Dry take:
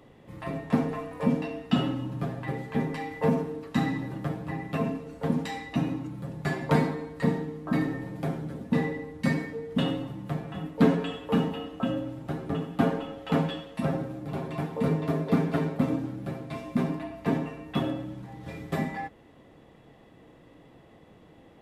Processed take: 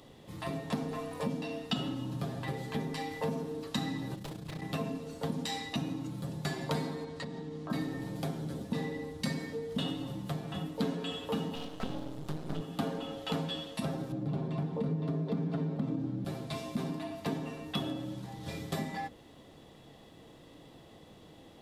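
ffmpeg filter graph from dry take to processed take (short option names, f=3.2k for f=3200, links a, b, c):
-filter_complex "[0:a]asettb=1/sr,asplit=3[a][b][c];[a]atrim=end=4.154[d];[b]atrim=start=4.15:end=4.62,asetpts=PTS-STARTPTS,afade=t=in:d=0.004:c=qsin,afade=t=out:st=0.466:d=0.004:c=qsin,equalizer=f=740:t=o:w=2.6:g=-8,aeval=exprs='0.0251*(abs(mod(val(0)/0.0251+3,4)-2)-1)':c=same,tremolo=f=29:d=0.667[e];[c]atrim=start=4.616[f];[d][e]acrossfade=d=0.004:c1=hsin:c2=qsin[g];[g][f]acrossfade=d=0.004:c1=qsin:c2=hsin,asettb=1/sr,asplit=3[h][i][j];[h]atrim=end=7.044[k];[i]atrim=start=7.04:end=7.7,asetpts=PTS-STARTPTS,afade=t=in:d=0.004:c=qsin,afade=t=out:st=0.656:d=0.004:c=qsin,lowpass=6.8k,acompressor=threshold=-36dB:ratio=8:attack=3.2:release=140:knee=1:detection=peak[l];[j]atrim=start=7.696[m];[k][l]acrossfade=d=0.004:c1=hsin:c2=qsin[n];[n][m]acrossfade=d=0.004:c1=qsin:c2=hsin,asettb=1/sr,asplit=3[o][p][q];[o]atrim=end=11.554[r];[p]atrim=start=11.55:end=12.61,asetpts=PTS-STARTPTS,afade=t=in:d=0.004:c=qsin,afade=t=out:st=1.056:d=0.004:c=qsin,lowshelf=f=110:t=q:w=3:g=-9.5,aeval=exprs='max(val(0),0)':c=same[s];[q]atrim=start=12.606[t];[r][s]acrossfade=d=0.004:c1=hsin:c2=qsin[u];[u][t]acrossfade=d=0.004:c1=qsin:c2=hsin,asettb=1/sr,asplit=3[v][w][x];[v]atrim=end=14.124[y];[w]atrim=start=14.12:end=16.25,asetpts=PTS-STARTPTS,afade=t=in:d=0.004:c=qsin,afade=t=out:st=2.126:d=0.004:c=qsin,highpass=f=130:w=0.5412,highpass=f=130:w=1.3066,aemphasis=mode=reproduction:type=riaa,acompressor=threshold=-21dB:ratio=2:attack=3.2:release=140:knee=1:detection=peak[z];[x]atrim=start=16.246[aa];[y][z]acrossfade=d=0.004:c1=hsin:c2=qsin[ab];[ab][aa]acrossfade=d=0.004:c1=qsin:c2=hsin,bandreject=f=60:t=h:w=6,bandreject=f=120:t=h:w=6,bandreject=f=180:t=h:w=6,bandreject=f=240:t=h:w=6,bandreject=f=300:t=h:w=6,bandreject=f=360:t=h:w=6,bandreject=f=420:t=h:w=6,bandreject=f=480:t=h:w=6,bandreject=f=540:t=h:w=6,acompressor=threshold=-33dB:ratio=3,highshelf=f=2.9k:t=q:w=1.5:g=7.5"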